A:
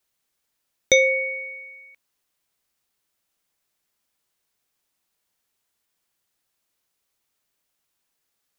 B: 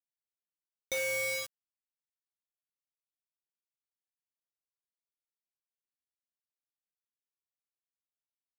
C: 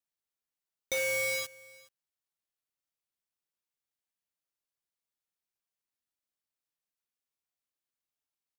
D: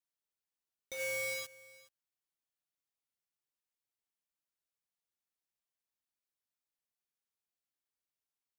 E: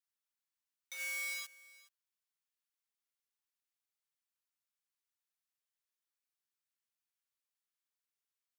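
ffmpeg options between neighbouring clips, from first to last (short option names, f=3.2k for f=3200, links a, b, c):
-af "areverse,acompressor=threshold=-25dB:ratio=12,areverse,acrusher=bits=4:mix=0:aa=0.000001,volume=-5.5dB"
-af "aecho=1:1:421:0.0708,volume=2dB"
-af "alimiter=level_in=5dB:limit=-24dB:level=0:latency=1:release=54,volume=-5dB,volume=-4dB"
-af "highpass=f=970:w=0.5412,highpass=f=970:w=1.3066,volume=-1dB"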